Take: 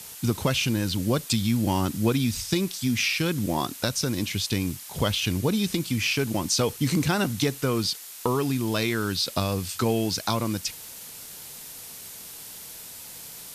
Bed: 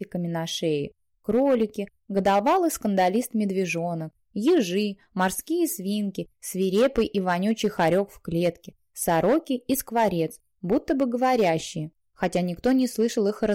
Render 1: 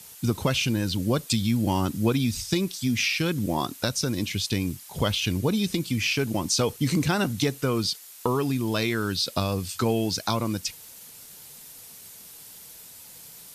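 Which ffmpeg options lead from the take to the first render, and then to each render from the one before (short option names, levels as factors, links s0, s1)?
-af "afftdn=nr=6:nf=-42"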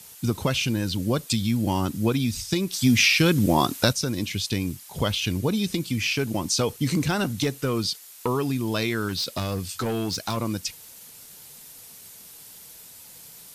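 -filter_complex "[0:a]asettb=1/sr,asplit=3[s0][s1][s2];[s0]atrim=end=2.724[s3];[s1]atrim=start=2.72:end=3.93,asetpts=PTS-STARTPTS,afade=t=in:d=0.004:c=qsin,afade=t=out:st=1.206:d=0.004:c=qsin,acontrast=70[s4];[s2]atrim=start=3.926[s5];[s3][s4]acrossfade=d=0.004:c1=hsin:c2=qsin[s6];[s6][s5]acrossfade=d=0.004:c1=qsin:c2=hsin,asettb=1/sr,asplit=3[s7][s8][s9];[s7]atrim=end=6.894[s10];[s8]atrim=start=6.89:end=8.31,asetpts=PTS-STARTPTS,afade=t=in:d=0.004:c=qsin,afade=t=out:st=1.416:d=0.004:c=qsin,volume=6.31,asoftclip=hard,volume=0.158[s11];[s9]atrim=start=8.306[s12];[s10][s11]acrossfade=d=0.004:c1=hsin:c2=qsin[s13];[s13][s12]acrossfade=d=0.004:c1=qsin:c2=hsin,asettb=1/sr,asplit=3[s14][s15][s16];[s14]atrim=end=9.084[s17];[s15]atrim=start=9.08:end=10.37,asetpts=PTS-STARTPTS,afade=t=in:d=0.004:c=qsin,afade=t=out:st=1.286:d=0.004:c=qsin,volume=13.3,asoftclip=hard,volume=0.075[s18];[s16]atrim=start=10.366[s19];[s17][s18]acrossfade=d=0.004:c1=hsin:c2=qsin[s20];[s20][s19]acrossfade=d=0.004:c1=qsin:c2=hsin"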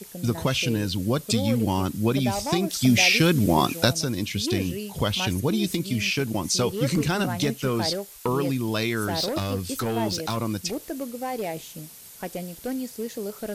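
-filter_complex "[1:a]volume=0.355[s0];[0:a][s0]amix=inputs=2:normalize=0"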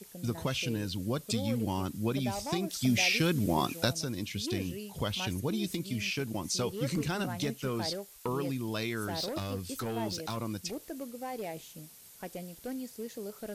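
-af "volume=0.376"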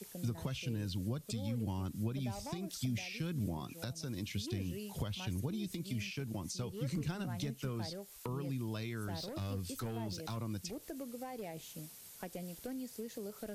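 -filter_complex "[0:a]alimiter=limit=0.0794:level=0:latency=1:release=455,acrossover=split=180[s0][s1];[s1]acompressor=threshold=0.00891:ratio=10[s2];[s0][s2]amix=inputs=2:normalize=0"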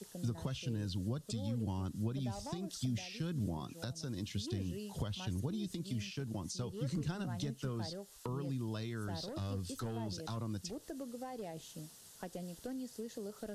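-af "lowpass=9700,equalizer=f=2300:w=5:g=-10.5"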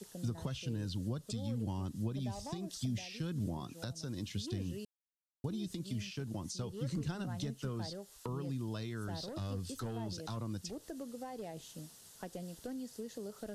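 -filter_complex "[0:a]asettb=1/sr,asplit=3[s0][s1][s2];[s0]atrim=end=1.734[s3];[s1]atrim=start=1.73:end=3.11,asetpts=PTS-STARTPTS,afade=t=in:d=0.004:c=qsin,afade=t=out:st=1.376:d=0.004:c=qsin,bandreject=f=1400:w=8.8[s4];[s2]atrim=start=3.106[s5];[s3][s4]acrossfade=d=0.004:c1=hsin:c2=qsin[s6];[s6][s5]acrossfade=d=0.004:c1=qsin:c2=hsin,asplit=3[s7][s8][s9];[s7]atrim=end=4.85,asetpts=PTS-STARTPTS,afade=t=out:st=4.846:d=0.004:c=hsin[s10];[s8]atrim=start=4.85:end=5.44,asetpts=PTS-STARTPTS,volume=0[s11];[s9]atrim=start=5.44,asetpts=PTS-STARTPTS,afade=t=in:d=0.004:c=hsin[s12];[s10][s11][s12]concat=n=3:v=0:a=1"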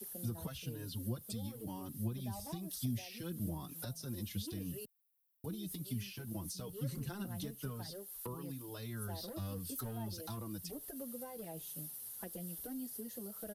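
-filter_complex "[0:a]aexciter=amount=6.2:drive=8.7:freq=10000,asplit=2[s0][s1];[s1]adelay=5.2,afreqshift=-1[s2];[s0][s2]amix=inputs=2:normalize=1"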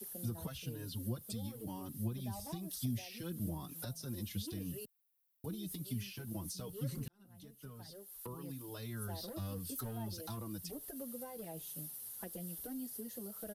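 -filter_complex "[0:a]asplit=2[s0][s1];[s0]atrim=end=7.08,asetpts=PTS-STARTPTS,afade=t=out:st=7.076:d=0.004:c=hsin[s2];[s1]atrim=start=7.08,asetpts=PTS-STARTPTS,afade=t=in:d=1.6[s3];[s2][s3]concat=n=2:v=0:a=1"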